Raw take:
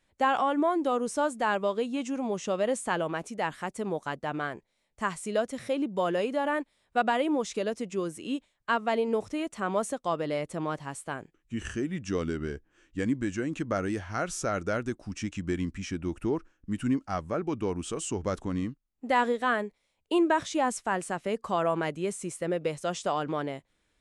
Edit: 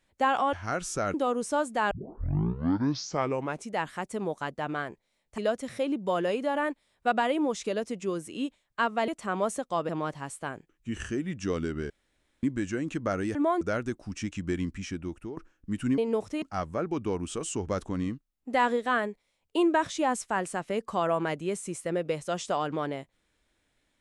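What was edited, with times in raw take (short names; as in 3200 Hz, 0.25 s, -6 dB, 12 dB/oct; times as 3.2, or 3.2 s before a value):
0.53–0.79 swap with 14–14.61
1.56 tape start 1.78 s
5.03–5.28 cut
8.98–9.42 move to 16.98
10.23–10.54 cut
12.55–13.08 room tone
15.64–16.37 fade out equal-power, to -15 dB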